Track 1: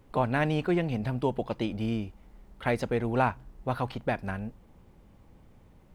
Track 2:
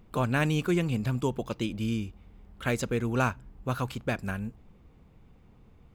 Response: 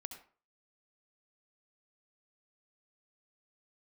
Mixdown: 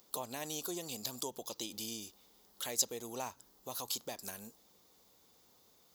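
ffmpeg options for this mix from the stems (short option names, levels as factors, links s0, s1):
-filter_complex "[0:a]highpass=89,equalizer=f=150:t=o:w=2.2:g=-10.5,volume=0.178,asplit=2[s0][s1];[1:a]highpass=450,aexciter=amount=10.7:drive=6.4:freq=3800,volume=0.596[s2];[s1]apad=whole_len=262022[s3];[s2][s3]sidechaincompress=threshold=0.00158:ratio=8:attack=16:release=106[s4];[s0][s4]amix=inputs=2:normalize=0,equalizer=f=8800:w=2.8:g=-9"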